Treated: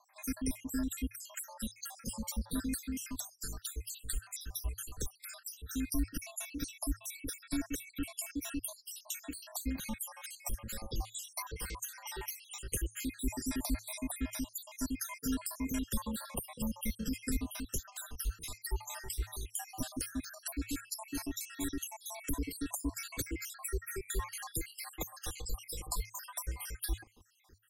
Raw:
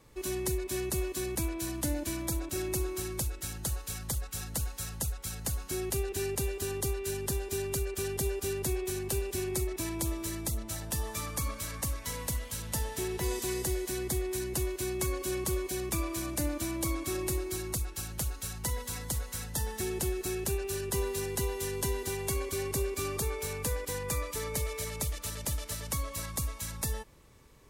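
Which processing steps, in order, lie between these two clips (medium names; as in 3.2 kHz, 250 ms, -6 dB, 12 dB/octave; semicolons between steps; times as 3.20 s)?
random holes in the spectrogram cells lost 73%; frequency shift -110 Hz; trim +1 dB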